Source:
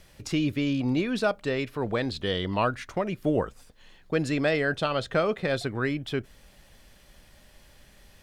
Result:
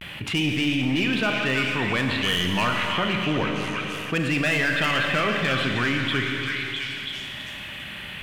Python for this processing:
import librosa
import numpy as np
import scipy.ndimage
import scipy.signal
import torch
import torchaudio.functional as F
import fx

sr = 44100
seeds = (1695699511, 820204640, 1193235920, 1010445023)

p1 = scipy.signal.sosfilt(scipy.signal.butter(2, 120.0, 'highpass', fs=sr, output='sos'), x)
p2 = fx.peak_eq(p1, sr, hz=490.0, db=-9.0, octaves=1.4)
p3 = fx.vibrato(p2, sr, rate_hz=0.31, depth_cents=40.0)
p4 = fx.high_shelf_res(p3, sr, hz=4000.0, db=-11.0, q=3.0)
p5 = 10.0 ** (-26.0 / 20.0) * (np.abs((p4 / 10.0 ** (-26.0 / 20.0) + 3.0) % 4.0 - 2.0) - 1.0)
p6 = p4 + (p5 * 10.0 ** (-3.5 / 20.0))
p7 = fx.echo_stepped(p6, sr, ms=329, hz=1600.0, octaves=0.7, feedback_pct=70, wet_db=-3.5)
p8 = fx.rev_schroeder(p7, sr, rt60_s=2.2, comb_ms=30, drr_db=4.0)
y = fx.env_flatten(p8, sr, amount_pct=50)